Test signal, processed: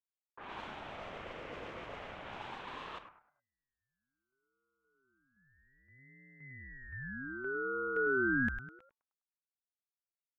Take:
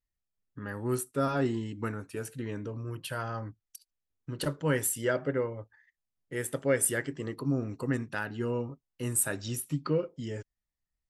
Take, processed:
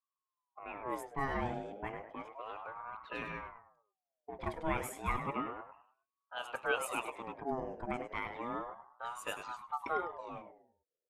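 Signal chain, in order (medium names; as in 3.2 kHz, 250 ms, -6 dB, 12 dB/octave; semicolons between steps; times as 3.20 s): fifteen-band graphic EQ 160 Hz +5 dB, 630 Hz +6 dB, 1.6 kHz +5 dB, 4 kHz -7 dB, 10 kHz -8 dB; frequency-shifting echo 102 ms, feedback 38%, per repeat -130 Hz, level -8.5 dB; dynamic bell 2.5 kHz, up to +7 dB, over -50 dBFS, Q 1.8; level-controlled noise filter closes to 460 Hz, open at -24.5 dBFS; ring modulator with a swept carrier 800 Hz, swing 40%, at 0.32 Hz; trim -8 dB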